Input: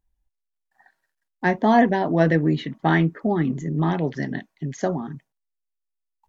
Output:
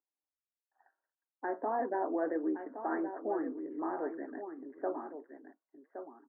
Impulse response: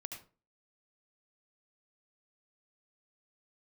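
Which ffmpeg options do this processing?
-filter_complex "[0:a]alimiter=limit=-12dB:level=0:latency=1:release=38,flanger=delay=0.7:depth=7.6:regen=-79:speed=1.6:shape=sinusoidal,asuperpass=centerf=670:order=12:qfactor=0.52,asplit=2[link_01][link_02];[link_02]aecho=0:1:1118:0.335[link_03];[link_01][link_03]amix=inputs=2:normalize=0,volume=-5dB"

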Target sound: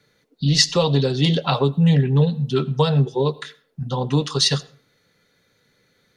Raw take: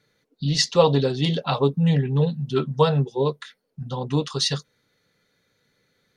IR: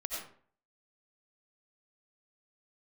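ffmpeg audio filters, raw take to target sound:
-filter_complex "[0:a]acrossover=split=160|3000[link_01][link_02][link_03];[link_02]acompressor=threshold=-23dB:ratio=4[link_04];[link_01][link_04][link_03]amix=inputs=3:normalize=0,asplit=2[link_05][link_06];[1:a]atrim=start_sample=2205,asetrate=48510,aresample=44100[link_07];[link_06][link_07]afir=irnorm=-1:irlink=0,volume=-19dB[link_08];[link_05][link_08]amix=inputs=2:normalize=0,volume=4.5dB"

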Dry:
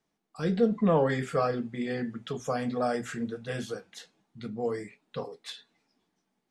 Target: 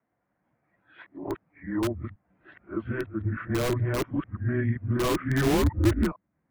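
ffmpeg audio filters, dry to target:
ffmpeg -i in.wav -filter_complex "[0:a]areverse,highpass=frequency=310:width_type=q:width=0.5412,highpass=frequency=310:width_type=q:width=1.307,lowpass=frequency=2200:width_type=q:width=0.5176,lowpass=frequency=2200:width_type=q:width=0.7071,lowpass=frequency=2200:width_type=q:width=1.932,afreqshift=-130,asplit=2[link_01][link_02];[link_02]aeval=exprs='(mod(16.8*val(0)+1,2)-1)/16.8':channel_layout=same,volume=-3dB[link_03];[link_01][link_03]amix=inputs=2:normalize=0,asubboost=boost=4:cutoff=240" out.wav

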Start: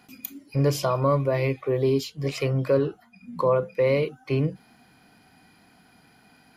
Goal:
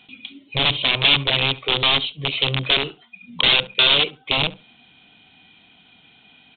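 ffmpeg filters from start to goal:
ffmpeg -i in.wav -filter_complex "[0:a]asettb=1/sr,asplit=3[link_01][link_02][link_03];[link_01]atrim=end=2.664[link_04];[link_02]atrim=start=2.66:end=3.3,asetpts=PTS-STARTPTS,afade=type=in:duration=0.004:curve=qsin,afade=type=out:start_time=0.636:duration=0.004:curve=qsin,tiltshelf=frequency=830:gain=-4[link_05];[link_03]atrim=start=3.296[link_06];[link_04][link_05]acrossfade=duration=0.004:curve1=hsin:curve2=qsin[link_07];[link_07][link_06]acrossfade=duration=0.004:curve1=qsin:curve2=hsin,aeval=exprs='(mod(7.5*val(0)+1,2)-1)/7.5':channel_layout=same,aexciter=amount=11:drive=4.2:freq=2600,asplit=2[link_08][link_09];[link_09]adelay=69,lowpass=frequency=1900:poles=1,volume=-18dB,asplit=2[link_10][link_11];[link_11]adelay=69,lowpass=frequency=1900:poles=1,volume=0.23[link_12];[link_10][link_12]amix=inputs=2:normalize=0[link_13];[link_08][link_13]amix=inputs=2:normalize=0,aresample=8000,aresample=44100,volume=-1dB" out.wav

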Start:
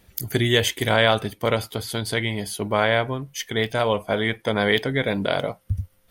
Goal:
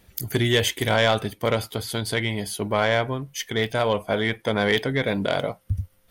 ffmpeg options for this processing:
ffmpeg -i in.wav -af "asoftclip=type=tanh:threshold=-9.5dB" out.wav

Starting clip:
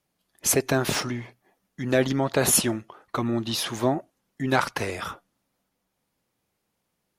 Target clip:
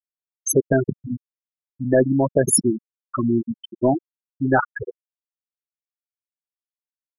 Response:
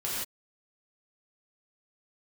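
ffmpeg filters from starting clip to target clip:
-af "afftfilt=real='re*gte(hypot(re,im),0.251)':imag='im*gte(hypot(re,im),0.251)':win_size=1024:overlap=0.75,apsyclip=14.5dB,volume=-7.5dB"

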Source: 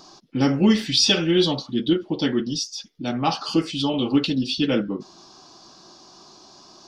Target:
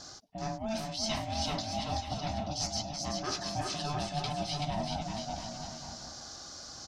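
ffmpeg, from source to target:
ffmpeg -i in.wav -af "highshelf=frequency=4600:width_type=q:width=1.5:gain=6,areverse,acompressor=threshold=-30dB:ratio=10,areverse,aeval=exprs='val(0)*sin(2*PI*440*n/s)':channel_layout=same,aecho=1:1:380|684|927.2|1122|1277:0.631|0.398|0.251|0.158|0.1" out.wav

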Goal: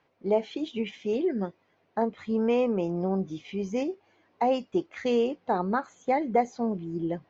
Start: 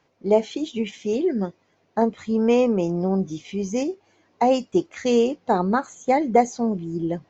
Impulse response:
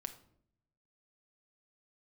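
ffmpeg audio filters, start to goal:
-filter_complex "[0:a]lowpass=3500,lowshelf=frequency=400:gain=-4.5,asplit=2[link_01][link_02];[link_02]alimiter=limit=-18dB:level=0:latency=1:release=258,volume=-0.5dB[link_03];[link_01][link_03]amix=inputs=2:normalize=0,volume=-7.5dB"

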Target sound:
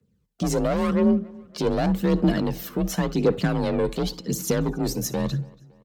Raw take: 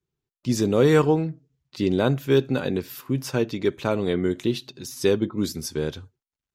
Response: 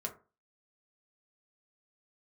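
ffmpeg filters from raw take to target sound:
-filter_complex "[0:a]lowshelf=frequency=250:gain=11.5,asoftclip=type=tanh:threshold=-17dB,asplit=2[link_01][link_02];[1:a]atrim=start_sample=2205,adelay=65[link_03];[link_02][link_03]afir=irnorm=-1:irlink=0,volume=-19dB[link_04];[link_01][link_04]amix=inputs=2:normalize=0,afreqshift=32,alimiter=limit=-18.5dB:level=0:latency=1:release=458,aphaser=in_gain=1:out_gain=1:delay=2.3:decay=0.47:speed=0.81:type=triangular,asetrate=49392,aresample=44100,asplit=2[link_05][link_06];[link_06]adelay=281,lowpass=frequency=4600:poles=1,volume=-24dB,asplit=2[link_07][link_08];[link_08]adelay=281,lowpass=frequency=4600:poles=1,volume=0.48,asplit=2[link_09][link_10];[link_10]adelay=281,lowpass=frequency=4600:poles=1,volume=0.48[link_11];[link_05][link_07][link_09][link_11]amix=inputs=4:normalize=0,volume=4.5dB"

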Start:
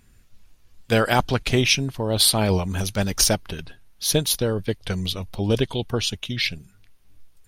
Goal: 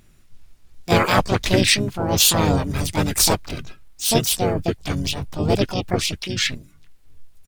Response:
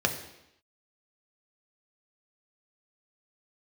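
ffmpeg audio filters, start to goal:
-filter_complex "[0:a]asplit=3[link_01][link_02][link_03];[link_02]asetrate=35002,aresample=44100,atempo=1.25992,volume=-1dB[link_04];[link_03]asetrate=66075,aresample=44100,atempo=0.66742,volume=0dB[link_05];[link_01][link_04][link_05]amix=inputs=3:normalize=0,aeval=exprs='1.06*(cos(1*acos(clip(val(0)/1.06,-1,1)))-cos(1*PI/2))+0.0168*(cos(7*acos(clip(val(0)/1.06,-1,1)))-cos(7*PI/2))':channel_layout=same,volume=-1.5dB"

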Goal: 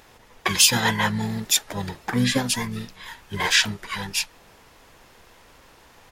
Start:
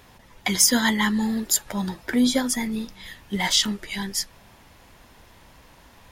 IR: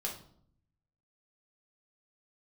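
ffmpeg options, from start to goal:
-filter_complex "[0:a]asplit=3[link_01][link_02][link_03];[link_02]asetrate=22050,aresample=44100,atempo=2,volume=0dB[link_04];[link_03]asetrate=35002,aresample=44100,atempo=1.25992,volume=-8dB[link_05];[link_01][link_04][link_05]amix=inputs=3:normalize=0,lowshelf=frequency=290:gain=-7.5,volume=-1dB"

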